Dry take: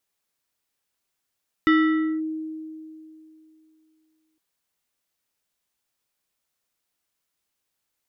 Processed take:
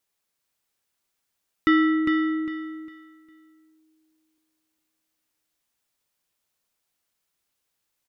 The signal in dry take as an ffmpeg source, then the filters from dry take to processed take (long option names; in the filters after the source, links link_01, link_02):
-f lavfi -i "aevalsrc='0.224*pow(10,-3*t/2.82)*sin(2*PI*315*t+0.85*clip(1-t/0.54,0,1)*sin(2*PI*5.2*315*t))':duration=2.71:sample_rate=44100"
-af "aecho=1:1:404|808|1212|1616:0.531|0.149|0.0416|0.0117"